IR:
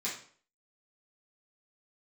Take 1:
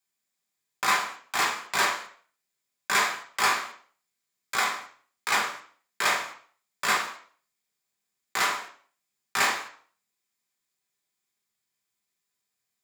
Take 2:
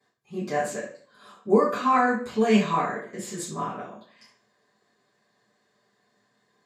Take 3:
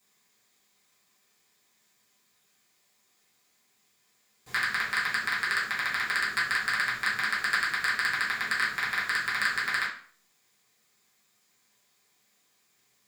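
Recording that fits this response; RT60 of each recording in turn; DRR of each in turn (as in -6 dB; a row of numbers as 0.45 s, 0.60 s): 3; 0.50 s, 0.50 s, 0.50 s; -1.5 dB, -15.0 dB, -9.0 dB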